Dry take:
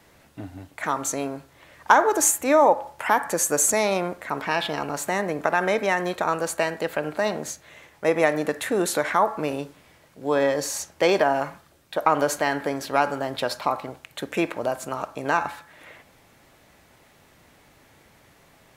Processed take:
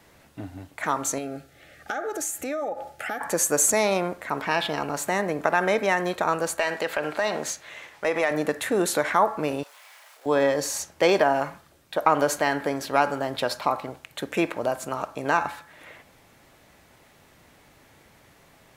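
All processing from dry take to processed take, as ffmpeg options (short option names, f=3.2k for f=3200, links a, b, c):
-filter_complex "[0:a]asettb=1/sr,asplit=3[a][b][c];[a]atrim=end=1.184[d];[b]atrim=start=1.18:end=3.21,asetpts=PTS-STARTPTS,afade=t=in:d=0.004:c=qsin,afade=t=out:st=2.026:d=0.004:c=qsin,asuperstop=centerf=1000:order=12:qfactor=3.1,acompressor=threshold=-28dB:ratio=4:attack=3.2:release=140:knee=1:detection=peak[e];[c]atrim=start=3.206[f];[d][e]acrossfade=d=0.004:c1=hsin:c2=qsin[g];[g][f]acrossfade=d=0.004:c1=qsin:c2=hsin,asettb=1/sr,asplit=3[h][i][j];[h]atrim=end=6.594[k];[i]atrim=start=6.59:end=8.31,asetpts=PTS-STARTPTS,afade=t=in:d=0.004:c=qsin,afade=t=out:st=1.716:d=0.004:c=qsin,acompressor=threshold=-23dB:ratio=2.5:attack=3.2:release=140:knee=1:detection=peak,highshelf=f=2.5k:g=8.5,asplit=2[l][m];[m]highpass=f=720:p=1,volume=10dB,asoftclip=type=tanh:threshold=-9.5dB[n];[l][n]amix=inputs=2:normalize=0,lowpass=f=2.2k:p=1,volume=-6dB[o];[j]atrim=start=8.306[p];[k][o]acrossfade=d=0.004:c1=hsin:c2=qsin[q];[q][p]acrossfade=d=0.004:c1=qsin:c2=hsin,asettb=1/sr,asplit=3[r][s][t];[r]atrim=end=9.634[u];[s]atrim=start=9.63:end=10.26,asetpts=PTS-STARTPTS,afade=t=in:d=0.004:c=qsin,afade=t=out:st=0.626:d=0.004:c=qsin,aeval=exprs='val(0)+0.5*0.00355*sgn(val(0))':c=same,highpass=f=730:w=0.5412,highpass=f=730:w=1.3066,asplit=2[v][w];[w]adelay=30,volume=-5dB[x];[v][x]amix=inputs=2:normalize=0,atrim=end_sample=27783[y];[t]atrim=start=10.256[z];[u][y]acrossfade=d=0.004:c1=hsin:c2=qsin[aa];[aa][z]acrossfade=d=0.004:c1=qsin:c2=hsin"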